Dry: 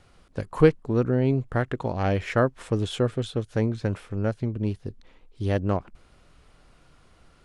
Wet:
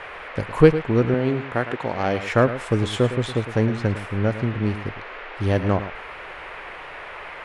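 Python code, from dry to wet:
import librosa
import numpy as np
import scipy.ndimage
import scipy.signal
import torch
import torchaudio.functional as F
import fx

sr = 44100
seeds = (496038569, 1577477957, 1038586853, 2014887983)

y = x + 10.0 ** (-12.5 / 20.0) * np.pad(x, (int(109 * sr / 1000.0), 0))[:len(x)]
y = fx.dmg_noise_band(y, sr, seeds[0], low_hz=390.0, high_hz=2400.0, level_db=-41.0)
y = fx.highpass(y, sr, hz=280.0, slope=6, at=(1.14, 2.32))
y = y * 10.0 ** (4.0 / 20.0)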